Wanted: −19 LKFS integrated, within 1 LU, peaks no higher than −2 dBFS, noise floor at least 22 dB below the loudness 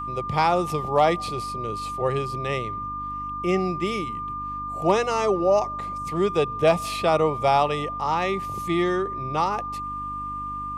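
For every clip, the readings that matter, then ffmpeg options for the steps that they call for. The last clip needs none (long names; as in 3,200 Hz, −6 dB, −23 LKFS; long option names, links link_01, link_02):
mains hum 50 Hz; hum harmonics up to 300 Hz; level of the hum −38 dBFS; interfering tone 1,200 Hz; level of the tone −29 dBFS; integrated loudness −24.5 LKFS; sample peak −7.5 dBFS; target loudness −19.0 LKFS
→ -af "bandreject=frequency=50:width_type=h:width=4,bandreject=frequency=100:width_type=h:width=4,bandreject=frequency=150:width_type=h:width=4,bandreject=frequency=200:width_type=h:width=4,bandreject=frequency=250:width_type=h:width=4,bandreject=frequency=300:width_type=h:width=4"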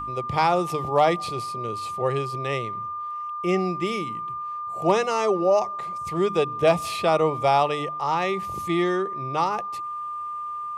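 mains hum none found; interfering tone 1,200 Hz; level of the tone −29 dBFS
→ -af "bandreject=frequency=1200:width=30"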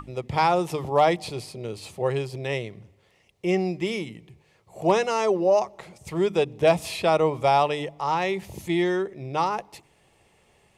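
interfering tone none found; integrated loudness −24.5 LKFS; sample peak −8.0 dBFS; target loudness −19.0 LKFS
→ -af "volume=5.5dB"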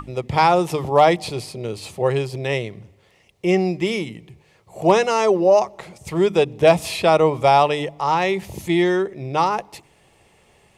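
integrated loudness −19.0 LKFS; sample peak −2.5 dBFS; background noise floor −57 dBFS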